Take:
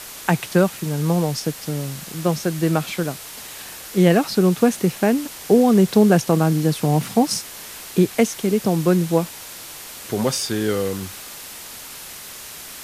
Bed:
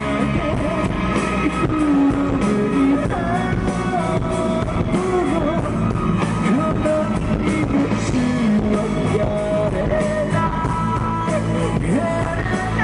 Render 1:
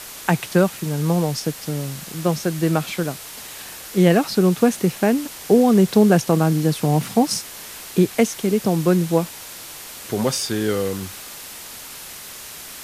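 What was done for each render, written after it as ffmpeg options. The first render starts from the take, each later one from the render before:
ffmpeg -i in.wav -af anull out.wav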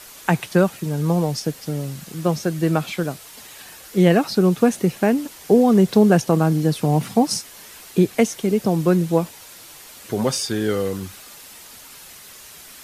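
ffmpeg -i in.wav -af "afftdn=noise_reduction=7:noise_floor=-37" out.wav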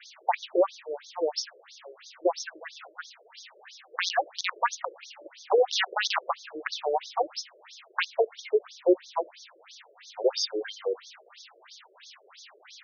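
ffmpeg -i in.wav -filter_complex "[0:a]acrossover=split=400|780|2800[link_01][link_02][link_03][link_04];[link_01]aeval=exprs='(mod(3.76*val(0)+1,2)-1)/3.76':channel_layout=same[link_05];[link_05][link_02][link_03][link_04]amix=inputs=4:normalize=0,afftfilt=real='re*between(b*sr/1024,440*pow(4800/440,0.5+0.5*sin(2*PI*3*pts/sr))/1.41,440*pow(4800/440,0.5+0.5*sin(2*PI*3*pts/sr))*1.41)':imag='im*between(b*sr/1024,440*pow(4800/440,0.5+0.5*sin(2*PI*3*pts/sr))/1.41,440*pow(4800/440,0.5+0.5*sin(2*PI*3*pts/sr))*1.41)':win_size=1024:overlap=0.75" out.wav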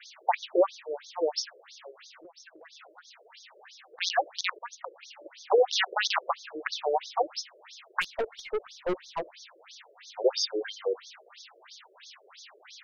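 ffmpeg -i in.wav -filter_complex "[0:a]asplit=3[link_01][link_02][link_03];[link_01]afade=type=out:start_time=1.9:duration=0.02[link_04];[link_02]acompressor=threshold=-47dB:ratio=16:attack=3.2:release=140:knee=1:detection=peak,afade=type=in:start_time=1.9:duration=0.02,afade=type=out:start_time=4:duration=0.02[link_05];[link_03]afade=type=in:start_time=4:duration=0.02[link_06];[link_04][link_05][link_06]amix=inputs=3:normalize=0,asettb=1/sr,asplit=3[link_07][link_08][link_09];[link_07]atrim=end=8.014[link_10];[link_08]atrim=start=8.01:end=9.35,asetpts=PTS-STARTPTS,afade=type=in:duration=0.004:curve=qsin,afade=type=out:start_time=1.336:duration=0.004:curve=qsin,aeval=exprs='(tanh(17.8*val(0)+0.25)-tanh(0.25))/17.8':channel_layout=same[link_11];[link_09]atrim=start=9.346[link_12];[link_10][link_11]acrossfade=duration=0.004:curve1=hsin:curve2=qsin[link_13];[link_13][link_12]acrossfade=duration=0.004:curve1=qsin:curve2=hsin,asplit=2[link_14][link_15];[link_14]atrim=end=4.59,asetpts=PTS-STARTPTS,afade=type=out:start_time=4.586:duration=0.004:curve=hsin:silence=0.0749894[link_16];[link_15]atrim=start=4.59,asetpts=PTS-STARTPTS,afade=type=in:duration=0.9:curve=qsin:silence=0.0749894[link_17];[link_16][link_17]concat=n=2:v=0:a=1" out.wav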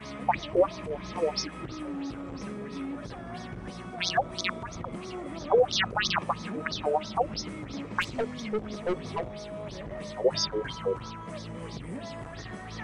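ffmpeg -i in.wav -i bed.wav -filter_complex "[1:a]volume=-20dB[link_01];[0:a][link_01]amix=inputs=2:normalize=0" out.wav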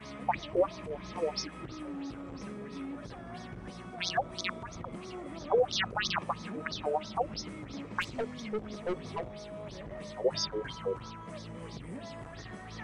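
ffmpeg -i in.wav -af "volume=-4.5dB" out.wav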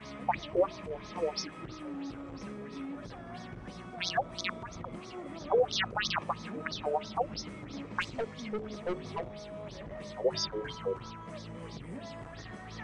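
ffmpeg -i in.wav -af "lowpass=8400,bandreject=frequency=61.85:width_type=h:width=4,bandreject=frequency=123.7:width_type=h:width=4,bandreject=frequency=185.55:width_type=h:width=4,bandreject=frequency=247.4:width_type=h:width=4,bandreject=frequency=309.25:width_type=h:width=4,bandreject=frequency=371.1:width_type=h:width=4,bandreject=frequency=432.95:width_type=h:width=4" out.wav

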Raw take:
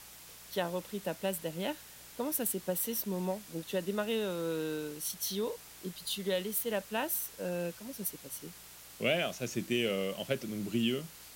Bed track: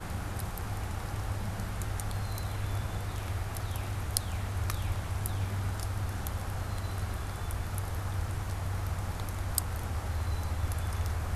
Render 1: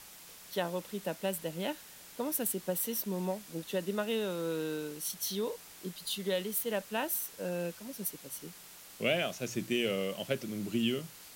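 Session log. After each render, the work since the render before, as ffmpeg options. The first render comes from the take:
ffmpeg -i in.wav -af "bandreject=frequency=60:width_type=h:width=4,bandreject=frequency=120:width_type=h:width=4" out.wav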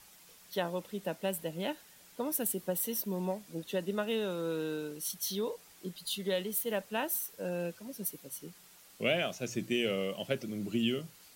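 ffmpeg -i in.wav -af "afftdn=noise_reduction=7:noise_floor=-52" out.wav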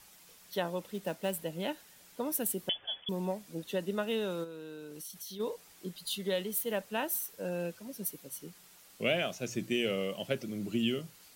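ffmpeg -i in.wav -filter_complex "[0:a]asettb=1/sr,asplit=3[link_01][link_02][link_03];[link_01]atrim=end=0.944[link_04];[link_02]atrim=start=0.94:end=1.4,asetpts=PTS-STARTPTS,afade=type=in:duration=0.004:curve=qsin,afade=type=out:start_time=0.456:duration=0.004:curve=qsin,acrusher=bits=5:mode=log:mix=0:aa=0.000001[link_05];[link_03]atrim=start=1.396[link_06];[link_04][link_05]acrossfade=duration=0.004:curve1=hsin:curve2=qsin[link_07];[link_07][link_06]acrossfade=duration=0.004:curve1=qsin:curve2=hsin,asettb=1/sr,asplit=3[link_08][link_09][link_10];[link_08]atrim=end=2.694[link_11];[link_09]atrim=start=2.69:end=3.09,asetpts=PTS-STARTPTS,afade=type=in:duration=0.004:curve=qsin,afade=type=out:start_time=0.396:duration=0.004:curve=qsin,lowpass=frequency=3100:width_type=q:width=0.5098,lowpass=frequency=3100:width_type=q:width=0.6013,lowpass=frequency=3100:width_type=q:width=0.9,lowpass=frequency=3100:width_type=q:width=2.563,afreqshift=-3600[link_12];[link_10]atrim=start=3.086[link_13];[link_11][link_12]acrossfade=duration=0.004:curve1=hsin:curve2=qsin[link_14];[link_14][link_13]acrossfade=duration=0.004:curve1=qsin:curve2=hsin,asplit=3[link_15][link_16][link_17];[link_15]afade=type=out:start_time=4.43:duration=0.02[link_18];[link_16]acompressor=threshold=-41dB:ratio=6:attack=3.2:release=140:knee=1:detection=peak,afade=type=in:start_time=4.43:duration=0.02,afade=type=out:start_time=5.39:duration=0.02[link_19];[link_17]afade=type=in:start_time=5.39:duration=0.02[link_20];[link_18][link_19][link_20]amix=inputs=3:normalize=0" out.wav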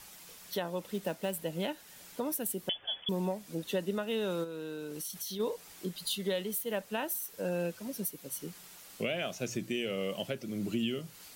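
ffmpeg -i in.wav -filter_complex "[0:a]asplit=2[link_01][link_02];[link_02]acompressor=threshold=-42dB:ratio=6,volume=-0.5dB[link_03];[link_01][link_03]amix=inputs=2:normalize=0,alimiter=limit=-22.5dB:level=0:latency=1:release=341" out.wav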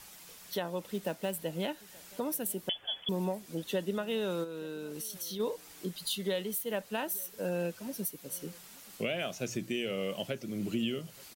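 ffmpeg -i in.wav -af "aecho=1:1:879:0.0631" out.wav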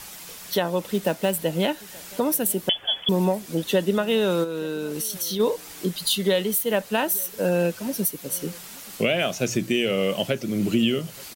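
ffmpeg -i in.wav -af "volume=11.5dB" out.wav

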